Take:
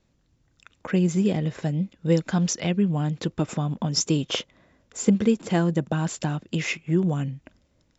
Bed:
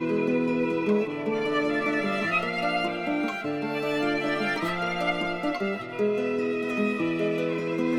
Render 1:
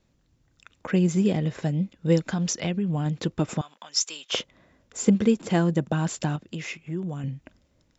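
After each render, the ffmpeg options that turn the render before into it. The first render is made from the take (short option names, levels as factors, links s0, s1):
-filter_complex "[0:a]asettb=1/sr,asplit=3[s0][s1][s2];[s0]atrim=end=2.184[s3];[s1]atrim=start=2.18:end=3.06,asetpts=PTS-STARTPTS,afade=t=in:d=0.004:c=qsin,afade=t=out:st=0.876:d=0.004:c=qsin,acompressor=threshold=0.0794:ratio=6:attack=3.2:release=140:knee=1:detection=peak[s4];[s2]atrim=start=3.056[s5];[s3][s4]acrossfade=d=0.004:c1=hsin:c2=qsin[s6];[s6][s5]acrossfade=d=0.004:c1=qsin:c2=hsin,asettb=1/sr,asplit=3[s7][s8][s9];[s7]atrim=end=3.614[s10];[s8]atrim=start=3.61:end=4.33,asetpts=PTS-STARTPTS,afade=t=in:d=0.004:c=qsin,afade=t=out:st=0.716:d=0.004:c=qsin,highpass=1400[s11];[s9]atrim=start=4.326[s12];[s10][s11]acrossfade=d=0.004:c1=hsin:c2=qsin[s13];[s13][s12]acrossfade=d=0.004:c1=qsin:c2=hsin,asettb=1/sr,asplit=3[s14][s15][s16];[s14]atrim=end=6.364[s17];[s15]atrim=start=6.36:end=7.24,asetpts=PTS-STARTPTS,afade=t=in:d=0.004:c=qsin,afade=t=out:st=0.876:d=0.004:c=qsin,acompressor=threshold=0.00708:ratio=1.5:attack=3.2:release=140:knee=1:detection=peak[s18];[s16]atrim=start=7.236[s19];[s17][s18]acrossfade=d=0.004:c1=hsin:c2=qsin[s20];[s20][s19]acrossfade=d=0.004:c1=qsin:c2=hsin"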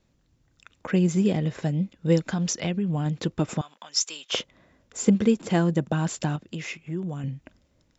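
-af anull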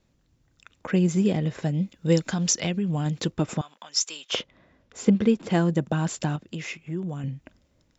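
-filter_complex "[0:a]asettb=1/sr,asplit=3[s0][s1][s2];[s0]atrim=end=1.744[s3];[s1]atrim=start=1.74:end=3.31,asetpts=PTS-STARTPTS,afade=t=in:d=0.004:c=qsin,afade=t=out:st=1.566:d=0.004:c=qsin,highshelf=f=3700:g=8[s4];[s2]atrim=start=3.306[s5];[s3][s4]acrossfade=d=0.004:c1=hsin:c2=qsin[s6];[s6][s5]acrossfade=d=0.004:c1=qsin:c2=hsin,asettb=1/sr,asplit=3[s7][s8][s9];[s7]atrim=end=4.354[s10];[s8]atrim=start=4.35:end=5.52,asetpts=PTS-STARTPTS,afade=t=in:d=0.004:c=qsin,afade=t=out:st=1.166:d=0.004:c=qsin,lowpass=5000[s11];[s9]atrim=start=5.516[s12];[s10][s11]acrossfade=d=0.004:c1=hsin:c2=qsin[s13];[s13][s12]acrossfade=d=0.004:c1=qsin:c2=hsin"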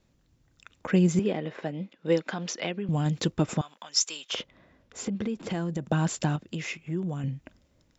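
-filter_complex "[0:a]asettb=1/sr,asplit=3[s0][s1][s2];[s0]atrim=end=1.194[s3];[s1]atrim=start=1.19:end=2.89,asetpts=PTS-STARTPTS,afade=t=in:d=0.004:c=qsin,afade=t=out:st=1.696:d=0.004:c=qsin,highpass=310,lowpass=3100[s4];[s2]atrim=start=2.886[s5];[s3][s4]acrossfade=d=0.004:c1=hsin:c2=qsin[s6];[s6][s5]acrossfade=d=0.004:c1=qsin:c2=hsin,asettb=1/sr,asplit=3[s7][s8][s9];[s7]atrim=end=4.134[s10];[s8]atrim=start=4.13:end=5.86,asetpts=PTS-STARTPTS,afade=t=in:d=0.004:c=qsin,afade=t=out:st=1.726:d=0.004:c=qsin,acompressor=threshold=0.0447:ratio=6:attack=3.2:release=140:knee=1:detection=peak[s11];[s9]atrim=start=5.856[s12];[s10][s11]acrossfade=d=0.004:c1=hsin:c2=qsin[s13];[s13][s12]acrossfade=d=0.004:c1=qsin:c2=hsin"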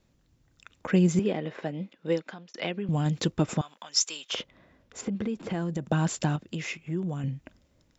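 -filter_complex "[0:a]asettb=1/sr,asplit=3[s0][s1][s2];[s0]atrim=end=5.014[s3];[s1]atrim=start=5.01:end=5.62,asetpts=PTS-STARTPTS,afade=t=in:d=0.004:c=qsin,afade=t=out:st=0.606:d=0.004:c=qsin,acrossover=split=2700[s4][s5];[s5]acompressor=threshold=0.00316:ratio=4:attack=1:release=60[s6];[s4][s6]amix=inputs=2:normalize=0[s7];[s2]atrim=start=5.616[s8];[s3][s7]acrossfade=d=0.004:c1=hsin:c2=qsin[s9];[s9][s8]acrossfade=d=0.004:c1=qsin:c2=hsin,asplit=2[s10][s11];[s10]atrim=end=2.54,asetpts=PTS-STARTPTS,afade=t=out:st=1.96:d=0.58[s12];[s11]atrim=start=2.54,asetpts=PTS-STARTPTS,afade=t=in:d=0.004:c=hsin[s13];[s12][s13]concat=n=2:v=0:a=1"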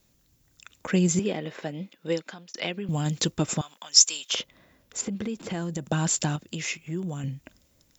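-af "aemphasis=mode=production:type=75fm"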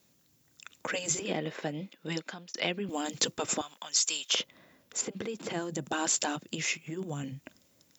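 -af "afftfilt=real='re*lt(hypot(re,im),0.282)':imag='im*lt(hypot(re,im),0.282)':win_size=1024:overlap=0.75,highpass=140"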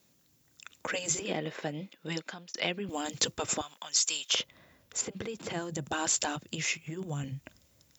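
-af "asubboost=boost=5:cutoff=100"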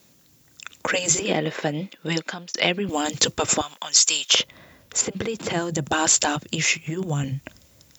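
-af "volume=3.35,alimiter=limit=0.794:level=0:latency=1"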